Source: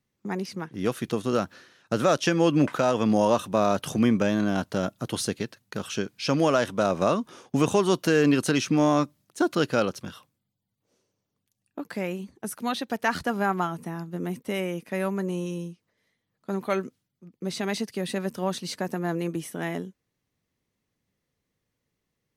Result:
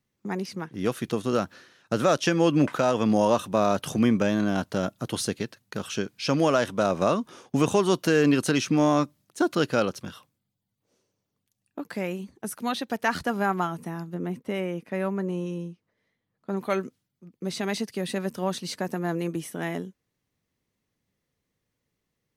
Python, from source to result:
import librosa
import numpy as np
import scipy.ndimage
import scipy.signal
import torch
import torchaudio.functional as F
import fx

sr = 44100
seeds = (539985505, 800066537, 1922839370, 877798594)

y = fx.high_shelf(x, sr, hz=3800.0, db=-11.0, at=(14.14, 16.57))